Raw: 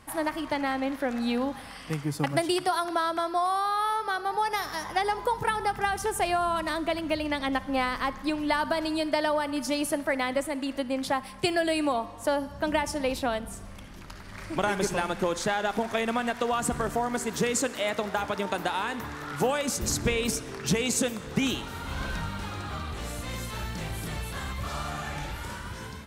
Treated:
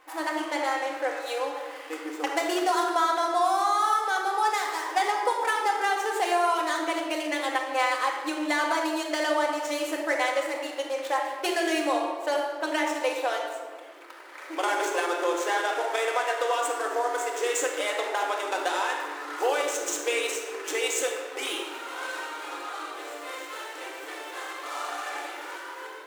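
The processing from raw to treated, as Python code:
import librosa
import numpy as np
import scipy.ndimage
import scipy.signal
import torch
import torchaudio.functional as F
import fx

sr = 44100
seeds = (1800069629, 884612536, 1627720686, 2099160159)

y = scipy.ndimage.median_filter(x, 9, mode='constant')
y = fx.dynamic_eq(y, sr, hz=7300.0, q=1.1, threshold_db=-55.0, ratio=4.0, max_db=7)
y = fx.brickwall_highpass(y, sr, low_hz=300.0)
y = fx.peak_eq(y, sr, hz=420.0, db=-3.0, octaves=1.4)
y = fx.room_shoebox(y, sr, seeds[0], volume_m3=1400.0, walls='mixed', distance_m=2.0)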